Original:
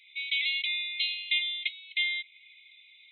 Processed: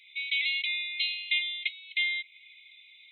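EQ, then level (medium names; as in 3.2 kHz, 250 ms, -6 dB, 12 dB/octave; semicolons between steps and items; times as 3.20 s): dynamic bell 3.4 kHz, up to -4 dB, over -45 dBFS, Q 4.2; +1.5 dB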